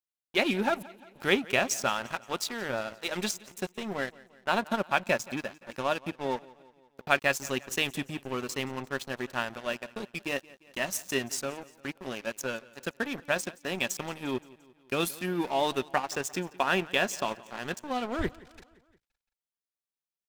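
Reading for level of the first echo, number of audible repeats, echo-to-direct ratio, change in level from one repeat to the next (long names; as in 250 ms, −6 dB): −21.5 dB, 3, −20.0 dB, −5.0 dB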